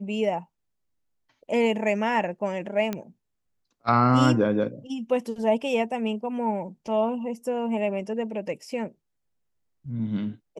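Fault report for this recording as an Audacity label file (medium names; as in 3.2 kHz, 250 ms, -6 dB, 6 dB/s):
2.930000	2.930000	pop -15 dBFS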